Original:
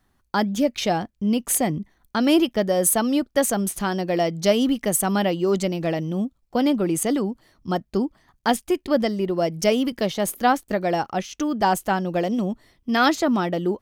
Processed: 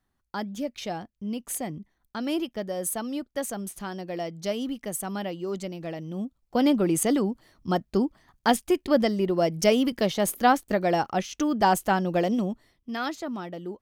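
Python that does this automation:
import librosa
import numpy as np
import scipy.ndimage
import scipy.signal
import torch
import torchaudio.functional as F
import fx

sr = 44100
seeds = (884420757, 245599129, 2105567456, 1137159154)

y = fx.gain(x, sr, db=fx.line((5.97, -10.5), (6.65, -1.0), (12.31, -1.0), (13.04, -12.5)))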